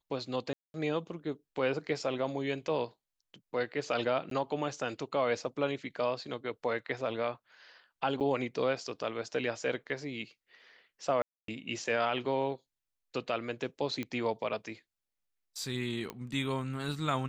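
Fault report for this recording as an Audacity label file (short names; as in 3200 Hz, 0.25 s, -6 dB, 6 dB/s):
0.530000	0.740000	gap 0.211 s
4.300000	4.310000	gap 13 ms
8.200000	8.210000	gap 7.8 ms
11.220000	11.480000	gap 0.263 s
14.030000	14.030000	pop -23 dBFS
16.100000	16.100000	pop -23 dBFS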